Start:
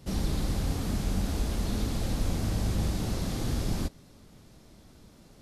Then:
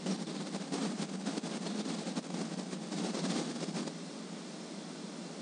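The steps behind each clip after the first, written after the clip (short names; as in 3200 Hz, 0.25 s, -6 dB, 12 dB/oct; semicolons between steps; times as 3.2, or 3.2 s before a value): negative-ratio compressor -37 dBFS, ratio -1; FFT band-pass 160–9500 Hz; gain +4.5 dB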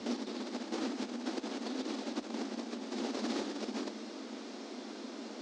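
self-modulated delay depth 0.13 ms; frequency shift +50 Hz; LPF 6400 Hz 24 dB/oct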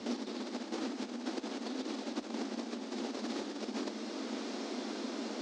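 vocal rider 0.5 s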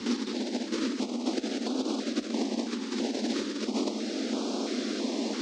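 stepped notch 3 Hz 650–1900 Hz; gain +9 dB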